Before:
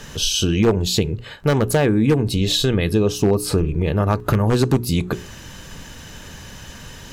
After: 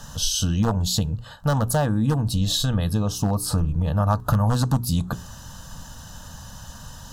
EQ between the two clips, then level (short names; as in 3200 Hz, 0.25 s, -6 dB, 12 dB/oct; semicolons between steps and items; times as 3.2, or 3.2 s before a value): fixed phaser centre 930 Hz, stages 4; 0.0 dB